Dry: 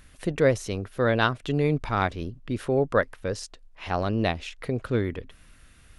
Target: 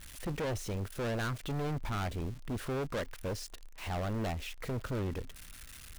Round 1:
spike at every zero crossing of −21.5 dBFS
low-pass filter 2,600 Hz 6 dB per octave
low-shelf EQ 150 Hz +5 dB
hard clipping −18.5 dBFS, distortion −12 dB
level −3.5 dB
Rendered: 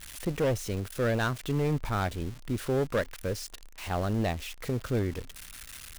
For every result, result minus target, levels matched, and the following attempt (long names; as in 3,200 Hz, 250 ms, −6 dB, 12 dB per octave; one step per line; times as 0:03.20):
hard clipping: distortion −8 dB; spike at every zero crossing: distortion +6 dB
spike at every zero crossing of −21.5 dBFS
low-pass filter 2,600 Hz 6 dB per octave
low-shelf EQ 150 Hz +5 dB
hard clipping −28.5 dBFS, distortion −4 dB
level −3.5 dB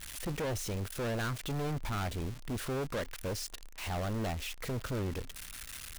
spike at every zero crossing: distortion +6 dB
spike at every zero crossing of −28 dBFS
low-pass filter 2,600 Hz 6 dB per octave
low-shelf EQ 150 Hz +5 dB
hard clipping −28.5 dBFS, distortion −4 dB
level −3.5 dB